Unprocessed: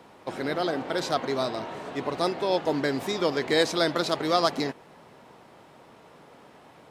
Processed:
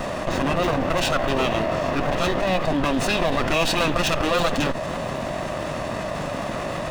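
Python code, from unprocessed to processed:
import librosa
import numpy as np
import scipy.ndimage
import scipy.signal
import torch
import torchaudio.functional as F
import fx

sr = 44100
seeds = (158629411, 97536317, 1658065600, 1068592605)

y = fx.lower_of_two(x, sr, delay_ms=1.1)
y = fx.formant_shift(y, sr, semitones=-6)
y = fx.env_flatten(y, sr, amount_pct=70)
y = y * 10.0 ** (5.0 / 20.0)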